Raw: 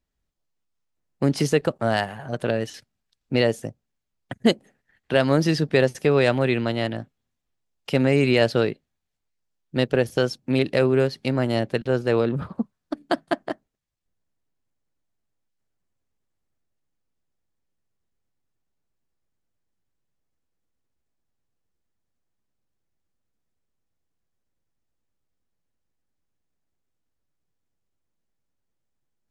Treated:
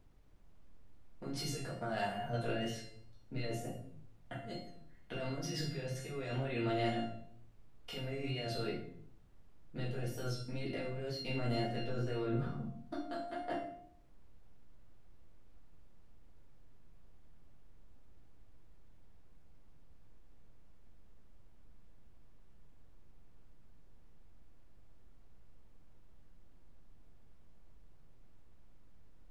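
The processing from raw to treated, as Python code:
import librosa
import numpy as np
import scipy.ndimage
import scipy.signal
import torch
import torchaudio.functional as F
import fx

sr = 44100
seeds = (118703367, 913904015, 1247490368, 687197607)

y = fx.over_compress(x, sr, threshold_db=-25.0, ratio=-1.0)
y = fx.comb_fb(y, sr, f0_hz=700.0, decay_s=0.48, harmonics='all', damping=0.0, mix_pct=90)
y = fx.room_shoebox(y, sr, seeds[0], volume_m3=87.0, walls='mixed', distance_m=1.8)
y = fx.wow_flutter(y, sr, seeds[1], rate_hz=2.1, depth_cents=27.0)
y = fx.dmg_noise_colour(y, sr, seeds[2], colour='brown', level_db=-59.0)
y = y * librosa.db_to_amplitude(-3.5)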